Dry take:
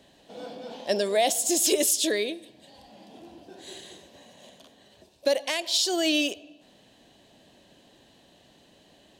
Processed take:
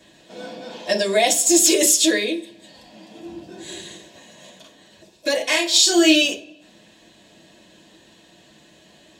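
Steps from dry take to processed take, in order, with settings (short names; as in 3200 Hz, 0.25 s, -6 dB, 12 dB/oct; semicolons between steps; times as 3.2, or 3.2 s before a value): 3.25–3.92 low shelf 180 Hz +10 dB; 5.36–6.22 doubler 32 ms -3 dB; reverb RT60 0.30 s, pre-delay 3 ms, DRR -5 dB; gain +1.5 dB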